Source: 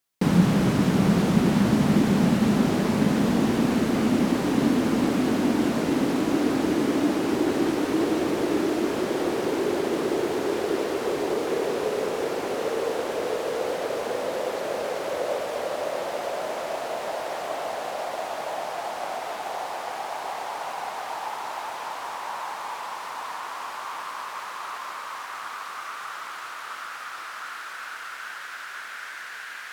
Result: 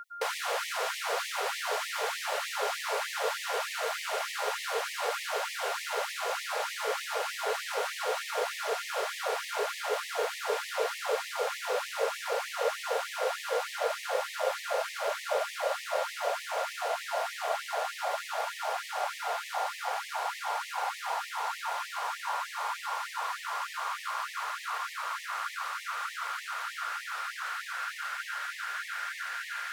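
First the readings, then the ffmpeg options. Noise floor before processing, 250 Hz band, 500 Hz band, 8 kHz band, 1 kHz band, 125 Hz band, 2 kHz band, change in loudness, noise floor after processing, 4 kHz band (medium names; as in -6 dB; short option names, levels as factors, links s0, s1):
-38 dBFS, under -40 dB, -7.0 dB, 0.0 dB, -2.0 dB, under -40 dB, 0.0 dB, -7.0 dB, -43 dBFS, 0.0 dB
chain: -filter_complex "[0:a]acrossover=split=860|5100[s0][s1][s2];[s1]volume=28.2,asoftclip=hard,volume=0.0355[s3];[s0][s3][s2]amix=inputs=3:normalize=0,afreqshift=21,aeval=exprs='val(0)+0.0112*sin(2*PI*1400*n/s)':c=same,afftfilt=real='re*gte(b*sr/1024,390*pow(1800/390,0.5+0.5*sin(2*PI*3.3*pts/sr)))':imag='im*gte(b*sr/1024,390*pow(1800/390,0.5+0.5*sin(2*PI*3.3*pts/sr)))':win_size=1024:overlap=0.75"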